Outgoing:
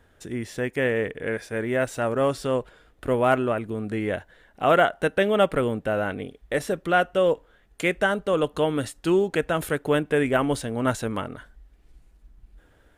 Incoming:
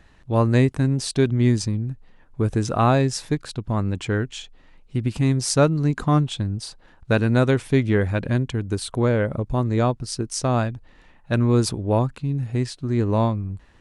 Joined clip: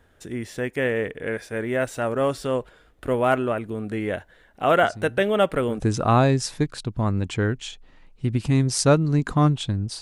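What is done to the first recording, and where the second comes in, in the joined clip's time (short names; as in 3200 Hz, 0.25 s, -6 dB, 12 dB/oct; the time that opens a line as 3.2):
outgoing
4.83 add incoming from 1.54 s 0.97 s -14 dB
5.8 switch to incoming from 2.51 s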